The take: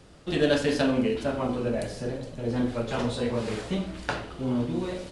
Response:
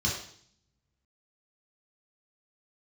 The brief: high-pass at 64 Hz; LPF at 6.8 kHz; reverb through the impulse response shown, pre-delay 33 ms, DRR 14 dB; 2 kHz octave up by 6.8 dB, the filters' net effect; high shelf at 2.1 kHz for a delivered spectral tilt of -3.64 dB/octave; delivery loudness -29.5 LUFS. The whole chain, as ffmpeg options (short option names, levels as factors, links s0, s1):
-filter_complex "[0:a]highpass=64,lowpass=6800,equalizer=f=2000:t=o:g=4.5,highshelf=f=2100:g=8,asplit=2[s0][s1];[1:a]atrim=start_sample=2205,adelay=33[s2];[s1][s2]afir=irnorm=-1:irlink=0,volume=0.0794[s3];[s0][s3]amix=inputs=2:normalize=0,volume=0.708"